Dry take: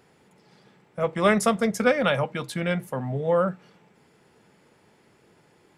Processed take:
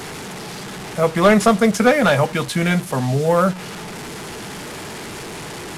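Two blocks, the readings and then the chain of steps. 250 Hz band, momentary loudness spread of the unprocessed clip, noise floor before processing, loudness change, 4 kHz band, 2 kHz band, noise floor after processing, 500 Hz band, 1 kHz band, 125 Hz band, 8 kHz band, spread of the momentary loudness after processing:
+9.0 dB, 9 LU, −61 dBFS, +7.5 dB, +8.5 dB, +7.5 dB, −32 dBFS, +6.5 dB, +8.0 dB, +9.5 dB, +9.0 dB, 17 LU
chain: linear delta modulator 64 kbit/s, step −36 dBFS
notch filter 530 Hz, Q 12
in parallel at −6 dB: soft clipping −26.5 dBFS, distortion −7 dB
on the sum: level +7 dB

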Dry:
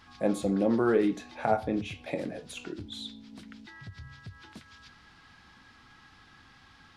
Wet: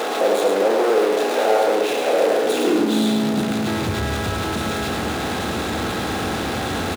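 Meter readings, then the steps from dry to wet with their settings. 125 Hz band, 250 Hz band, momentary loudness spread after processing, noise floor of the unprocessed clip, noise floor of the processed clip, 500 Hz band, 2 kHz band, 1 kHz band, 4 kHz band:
+13.0 dB, +10.0 dB, 6 LU, −57 dBFS, −25 dBFS, +14.0 dB, +16.5 dB, +14.5 dB, +18.5 dB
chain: compressor on every frequency bin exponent 0.4
power curve on the samples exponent 0.35
high-pass filter sweep 480 Hz → 67 Hz, 0:02.30–0:03.99
on a send: single-tap delay 107 ms −5 dB
on the sum: level −8 dB

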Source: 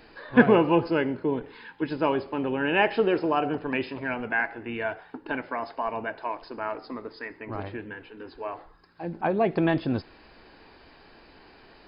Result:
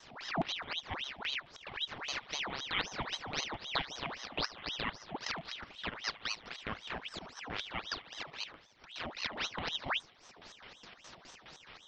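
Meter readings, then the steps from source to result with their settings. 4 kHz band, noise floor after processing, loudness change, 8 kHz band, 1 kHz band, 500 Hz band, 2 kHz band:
+5.0 dB, −60 dBFS, −11.5 dB, can't be measured, −12.0 dB, −20.5 dB, −9.0 dB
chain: peak hold with a rise ahead of every peak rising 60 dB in 0.52 s
noise gate with hold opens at −45 dBFS
high-shelf EQ 2,300 Hz +10.5 dB
transient designer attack +11 dB, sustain −11 dB
reversed playback
downward compressor 6 to 1, threshold −29 dBFS, peak gain reduction 24.5 dB
reversed playback
auto-filter low-pass square 4.8 Hz 250–2,700 Hz
delay with a high-pass on its return 73 ms, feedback 79%, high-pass 2,500 Hz, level −10.5 dB
ring modulator whose carrier an LFO sweeps 2,000 Hz, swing 80%, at 3.8 Hz
level −4.5 dB

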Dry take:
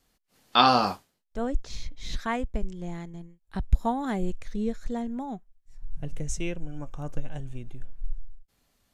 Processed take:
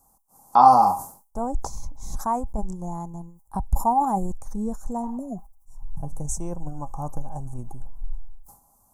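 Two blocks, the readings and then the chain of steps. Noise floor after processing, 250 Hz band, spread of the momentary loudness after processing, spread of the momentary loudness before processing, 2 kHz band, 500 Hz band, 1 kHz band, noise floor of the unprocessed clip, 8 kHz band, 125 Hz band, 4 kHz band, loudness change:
−62 dBFS, +0.5 dB, 22 LU, 19 LU, below −15 dB, +1.0 dB, +8.5 dB, −72 dBFS, +6.0 dB, +1.5 dB, below −15 dB, +5.5 dB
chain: drawn EQ curve 210 Hz 0 dB, 430 Hz −5 dB, 1,000 Hz +10 dB, 1,800 Hz −22 dB, 3,400 Hz −29 dB, 6,000 Hz 0 dB, 9,500 Hz +10 dB
healed spectral selection 0:05.05–0:05.36, 720–5,100 Hz both
in parallel at +2 dB: downward compressor, threshold −33 dBFS, peak gain reduction 20.5 dB
on the sum: hollow resonant body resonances 810/3,400 Hz, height 13 dB, ringing for 90 ms
level that may fall only so fast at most 120 dB per second
level −2.5 dB

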